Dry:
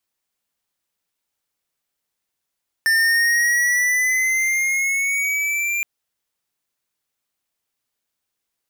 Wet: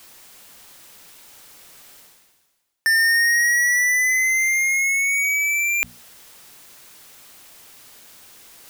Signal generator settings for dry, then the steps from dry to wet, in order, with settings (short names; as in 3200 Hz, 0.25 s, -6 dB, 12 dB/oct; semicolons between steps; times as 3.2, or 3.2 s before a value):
gliding synth tone square, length 2.97 s, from 1790 Hz, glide +5 st, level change -6 dB, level -16 dB
bell 62 Hz -6 dB 0.43 oct; notches 60/120/180/240 Hz; reverse; upward compressor, threshold -20 dBFS; reverse